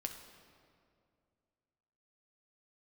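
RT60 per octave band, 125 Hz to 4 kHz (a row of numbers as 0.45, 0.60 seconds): 2.8, 2.6, 2.5, 2.2, 1.8, 1.5 seconds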